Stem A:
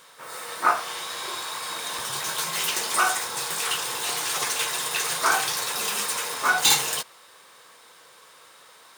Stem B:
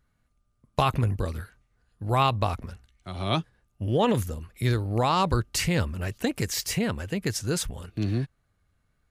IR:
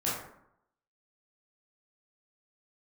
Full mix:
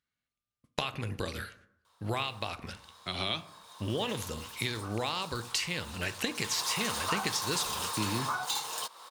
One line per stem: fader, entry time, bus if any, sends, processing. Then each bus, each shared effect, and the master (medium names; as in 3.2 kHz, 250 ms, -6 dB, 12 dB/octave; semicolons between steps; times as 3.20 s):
3.42 s -21 dB -> 4.06 s -13.5 dB -> 6.28 s -13.5 dB -> 6.67 s -1 dB, 1.85 s, no send, graphic EQ 125/1000/2000/4000 Hz -6/+10/-6/+5 dB; compression 4:1, threshold -33 dBFS, peak gain reduction 19.5 dB
0.0 dB, 0.00 s, send -18.5 dB, gate -58 dBFS, range -18 dB; frequency weighting D; compression 16:1, threshold -30 dBFS, peak gain reduction 18 dB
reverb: on, RT60 0.75 s, pre-delay 12 ms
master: none